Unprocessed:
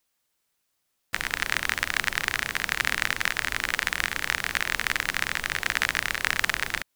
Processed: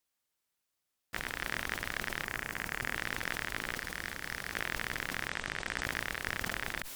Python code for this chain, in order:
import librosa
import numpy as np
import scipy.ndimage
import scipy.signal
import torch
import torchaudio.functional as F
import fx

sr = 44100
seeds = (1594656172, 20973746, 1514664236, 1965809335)

y = fx.peak_eq(x, sr, hz=3600.0, db=-7.0, octaves=0.72, at=(2.24, 2.95))
y = fx.clip_hard(y, sr, threshold_db=-18.5, at=(3.74, 4.54))
y = fx.ellip_lowpass(y, sr, hz=8600.0, order=4, stop_db=40, at=(5.28, 5.84))
y = fx.tube_stage(y, sr, drive_db=15.0, bias=0.4)
y = fx.sustainer(y, sr, db_per_s=37.0)
y = y * librosa.db_to_amplitude(-7.0)